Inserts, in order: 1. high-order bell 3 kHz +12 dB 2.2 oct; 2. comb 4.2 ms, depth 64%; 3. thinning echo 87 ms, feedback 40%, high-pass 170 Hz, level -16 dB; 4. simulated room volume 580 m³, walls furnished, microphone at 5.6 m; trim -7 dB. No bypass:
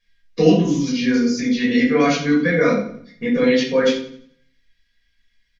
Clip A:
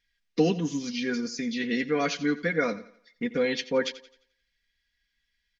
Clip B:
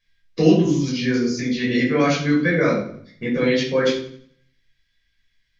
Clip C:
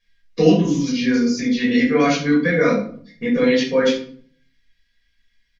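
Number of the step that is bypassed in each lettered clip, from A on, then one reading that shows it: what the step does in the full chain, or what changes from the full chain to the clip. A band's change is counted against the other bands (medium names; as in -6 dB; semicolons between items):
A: 4, momentary loudness spread change -2 LU; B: 2, loudness change -2.0 LU; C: 3, momentary loudness spread change -3 LU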